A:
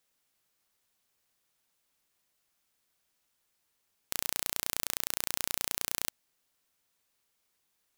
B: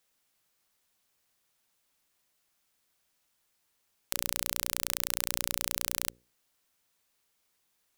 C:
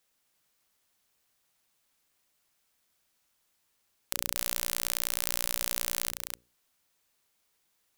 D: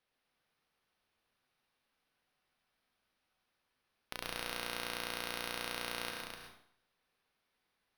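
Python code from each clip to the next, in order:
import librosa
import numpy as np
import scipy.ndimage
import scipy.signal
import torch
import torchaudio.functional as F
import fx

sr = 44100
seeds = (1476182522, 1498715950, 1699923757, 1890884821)

y1 = fx.hum_notches(x, sr, base_hz=60, count=9)
y1 = F.gain(torch.from_numpy(y1), 2.0).numpy()
y2 = y1 + 10.0 ** (-6.0 / 20.0) * np.pad(y1, (int(254 * sr / 1000.0), 0))[:len(y1)]
y3 = np.convolve(y2, np.full(6, 1.0 / 6))[:len(y2)]
y3 = fx.comb_fb(y3, sr, f0_hz=250.0, decay_s=0.66, harmonics='all', damping=0.0, mix_pct=60)
y3 = fx.rev_plate(y3, sr, seeds[0], rt60_s=0.61, hf_ratio=0.8, predelay_ms=95, drr_db=2.0)
y3 = F.gain(torch.from_numpy(y3), 4.5).numpy()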